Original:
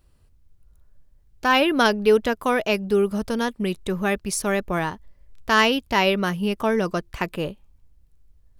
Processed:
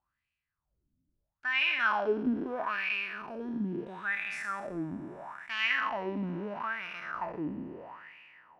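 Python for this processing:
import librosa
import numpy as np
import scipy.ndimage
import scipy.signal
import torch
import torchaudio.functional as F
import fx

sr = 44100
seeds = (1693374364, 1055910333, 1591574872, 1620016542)

y = fx.spec_trails(x, sr, decay_s=2.83)
y = fx.peak_eq(y, sr, hz=460.0, db=-13.0, octaves=0.89)
y = fx.wah_lfo(y, sr, hz=0.76, low_hz=260.0, high_hz=2500.0, q=6.7)
y = fx.low_shelf(y, sr, hz=340.0, db=11.5)
y = y * librosa.db_to_amplitude(-3.0)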